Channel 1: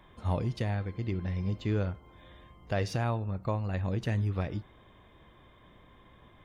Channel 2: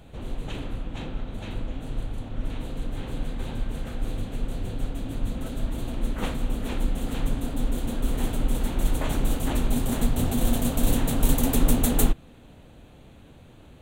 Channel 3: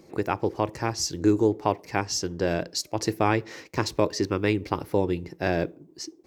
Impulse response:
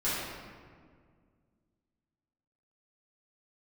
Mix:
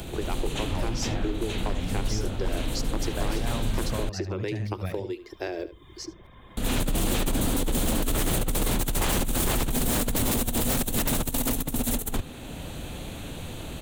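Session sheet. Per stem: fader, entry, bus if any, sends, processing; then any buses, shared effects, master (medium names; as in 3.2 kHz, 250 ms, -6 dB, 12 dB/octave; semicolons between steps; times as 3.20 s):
-3.5 dB, 0.45 s, bus A, no send, echo send -13.5 dB, none
+2.5 dB, 0.00 s, muted 4.02–6.57 s, no bus, no send, echo send -4.5 dB, treble shelf 3.8 kHz +9 dB; auto duck -17 dB, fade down 0.40 s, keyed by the third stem
-10.0 dB, 0.00 s, bus A, no send, echo send -20 dB, resonant low shelf 250 Hz -12 dB, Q 3
bus A: 0.0 dB, reverb removal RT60 0.51 s; compression, threshold -32 dBFS, peak gain reduction 11 dB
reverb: none
echo: delay 73 ms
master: compressor with a negative ratio -20 dBFS, ratio -0.5; wavefolder -19 dBFS; three bands compressed up and down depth 40%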